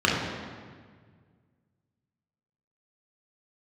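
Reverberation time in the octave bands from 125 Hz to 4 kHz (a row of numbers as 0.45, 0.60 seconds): 2.6, 2.1, 1.8, 1.6, 1.5, 1.3 seconds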